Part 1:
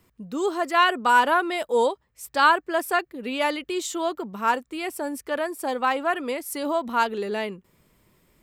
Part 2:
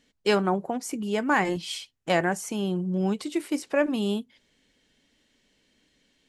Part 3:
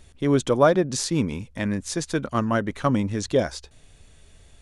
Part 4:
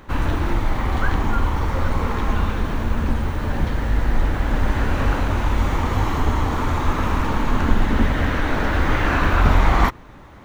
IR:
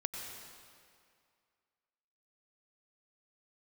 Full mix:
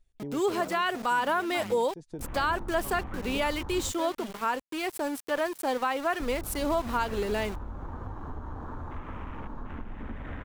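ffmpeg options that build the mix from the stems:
-filter_complex "[0:a]volume=0.841,asplit=2[s0][s1];[1:a]adelay=250,volume=0.15[s2];[2:a]acompressor=threshold=0.1:ratio=6,volume=0.282[s3];[3:a]adelay=2100,volume=0.188,asplit=3[s4][s5][s6];[s4]atrim=end=3.92,asetpts=PTS-STARTPTS,afade=t=out:st=3.916:d=0.004:c=hsin[s7];[s5]atrim=start=3.92:end=6.2,asetpts=PTS-STARTPTS,volume=0[s8];[s6]atrim=start=6.2,asetpts=PTS-STARTPTS,afade=t=in:d=0.004:c=hsin[s9];[s7][s8][s9]concat=n=3:v=0:a=1[s10];[s1]apad=whole_len=203628[s11];[s3][s11]sidechaincompress=threshold=0.0316:ratio=8:attack=21:release=309[s12];[s12][s10]amix=inputs=2:normalize=0,afwtdn=0.00794,acompressor=threshold=0.0224:ratio=12,volume=1[s13];[s0][s2]amix=inputs=2:normalize=0,aeval=exprs='val(0)*gte(abs(val(0)),0.015)':c=same,alimiter=limit=0.119:level=0:latency=1:release=121,volume=1[s14];[s13][s14]amix=inputs=2:normalize=0"

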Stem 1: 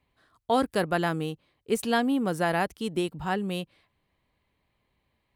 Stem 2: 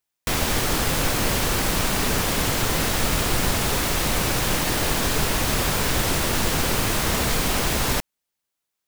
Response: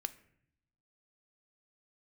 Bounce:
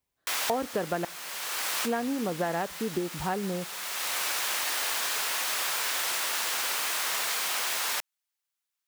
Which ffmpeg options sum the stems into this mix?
-filter_complex "[0:a]acompressor=threshold=0.0398:ratio=12,equalizer=f=570:w=0.94:g=4,afwtdn=0.00794,volume=0.75,asplit=3[s0][s1][s2];[s0]atrim=end=1.05,asetpts=PTS-STARTPTS,afade=t=out:st=1.046:d=0.004:c=hsin[s3];[s1]atrim=start=1.05:end=1.84,asetpts=PTS-STARTPTS,volume=0[s4];[s2]atrim=start=1.84,asetpts=PTS-STARTPTS,afade=t=in:d=0.004:c=hsin[s5];[s3][s4][s5]concat=n=3:v=0:a=1,asplit=3[s6][s7][s8];[s7]volume=0.501[s9];[1:a]highpass=980,volume=0.631[s10];[s8]apad=whole_len=391321[s11];[s10][s11]sidechaincompress=threshold=0.00794:ratio=8:attack=21:release=664[s12];[2:a]atrim=start_sample=2205[s13];[s9][s13]afir=irnorm=-1:irlink=0[s14];[s6][s12][s14]amix=inputs=3:normalize=0"

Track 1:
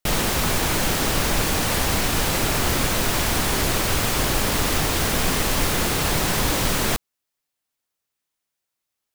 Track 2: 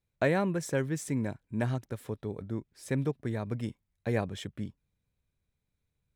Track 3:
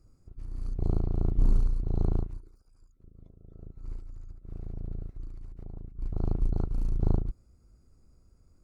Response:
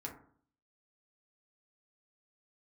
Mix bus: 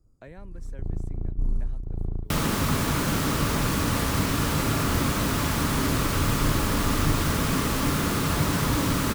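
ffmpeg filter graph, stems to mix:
-filter_complex "[0:a]highpass=f=120:p=1,equalizer=f=1200:t=o:w=0.6:g=7,bandreject=f=770:w=12,adelay=2250,volume=1.26,asplit=2[s0][s1];[s1]volume=0.596[s2];[1:a]volume=0.133[s3];[2:a]equalizer=f=2900:t=o:w=1.5:g=-12,volume=0.708[s4];[3:a]atrim=start_sample=2205[s5];[s2][s5]afir=irnorm=-1:irlink=0[s6];[s0][s3][s4][s6]amix=inputs=4:normalize=0,acrossover=split=280[s7][s8];[s8]acompressor=threshold=0.00398:ratio=1.5[s9];[s7][s9]amix=inputs=2:normalize=0"

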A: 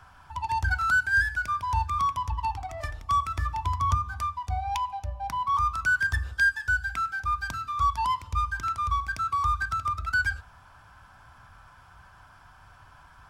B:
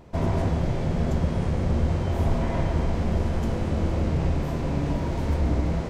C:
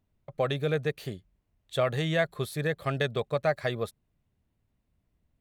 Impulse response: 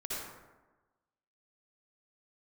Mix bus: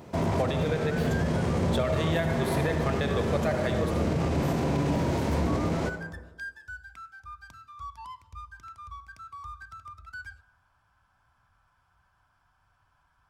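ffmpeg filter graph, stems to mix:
-filter_complex "[0:a]volume=0.15,asplit=2[s0][s1];[s1]volume=0.0708[s2];[1:a]highpass=110,highshelf=f=7700:g=6.5,alimiter=limit=0.0708:level=0:latency=1:release=16,volume=1.33,asplit=2[s3][s4];[s4]volume=0.299[s5];[2:a]volume=0.944,asplit=2[s6][s7];[s7]volume=0.562[s8];[3:a]atrim=start_sample=2205[s9];[s2][s5][s8]amix=inputs=3:normalize=0[s10];[s10][s9]afir=irnorm=-1:irlink=0[s11];[s0][s3][s6][s11]amix=inputs=4:normalize=0,alimiter=limit=0.141:level=0:latency=1:release=211"

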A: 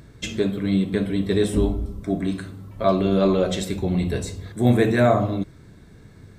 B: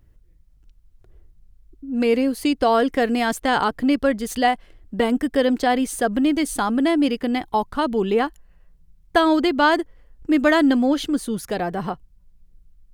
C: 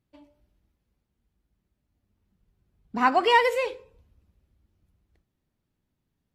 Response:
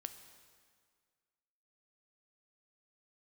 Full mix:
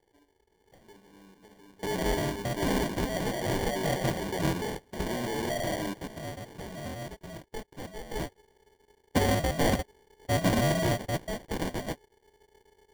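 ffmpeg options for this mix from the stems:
-filter_complex "[0:a]highpass=f=270:p=1,acompressor=threshold=0.0447:ratio=3,asplit=2[s0][s1];[s1]highpass=f=720:p=1,volume=7.08,asoftclip=type=tanh:threshold=0.119[s2];[s0][s2]amix=inputs=2:normalize=0,lowpass=f=2300:p=1,volume=0.501,adelay=500,volume=0.944[s3];[1:a]equalizer=f=5000:t=o:w=0.9:g=6,asplit=2[s4][s5];[s5]highpass=f=720:p=1,volume=3.55,asoftclip=type=tanh:threshold=0.668[s6];[s4][s6]amix=inputs=2:normalize=0,lowpass=f=1100:p=1,volume=0.501,aeval=exprs='val(0)*sgn(sin(2*PI*880*n/s))':c=same,volume=0.944,afade=t=out:st=4.95:d=0.25:silence=0.398107,afade=t=in:st=8.09:d=0.34:silence=0.266073,asplit=2[s7][s8];[2:a]adynamicsmooth=sensitivity=5.5:basefreq=610,volume=0.266[s9];[s8]apad=whole_len=303782[s10];[s3][s10]sidechaingate=range=0.0501:threshold=0.00141:ratio=16:detection=peak[s11];[s11][s9]amix=inputs=2:normalize=0,alimiter=level_in=1.26:limit=0.0631:level=0:latency=1:release=36,volume=0.794,volume=1[s12];[s7][s12]amix=inputs=2:normalize=0,acrusher=samples=34:mix=1:aa=0.000001"

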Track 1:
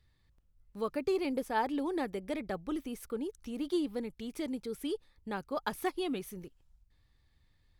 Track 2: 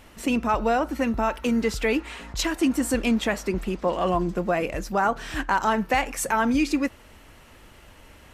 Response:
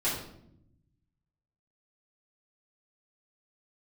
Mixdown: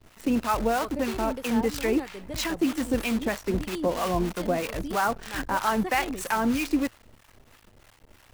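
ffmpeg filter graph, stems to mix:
-filter_complex "[0:a]volume=1.12[s0];[1:a]highshelf=f=3800:g=-7,acrusher=bits=6:dc=4:mix=0:aa=0.000001,volume=1.06[s1];[s0][s1]amix=inputs=2:normalize=0,equalizer=f=110:w=6.2:g=7,acrossover=split=720[s2][s3];[s2]aeval=exprs='val(0)*(1-0.7/2+0.7/2*cos(2*PI*3.1*n/s))':c=same[s4];[s3]aeval=exprs='val(0)*(1-0.7/2-0.7/2*cos(2*PI*3.1*n/s))':c=same[s5];[s4][s5]amix=inputs=2:normalize=0"

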